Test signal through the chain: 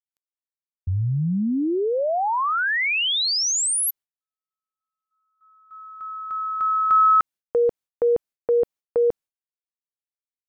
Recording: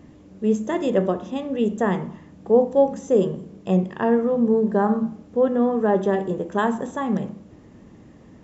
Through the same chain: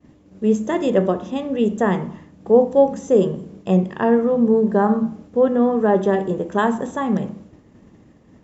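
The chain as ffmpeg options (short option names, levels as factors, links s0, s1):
-af "agate=range=0.0224:threshold=0.00891:ratio=3:detection=peak,volume=1.41"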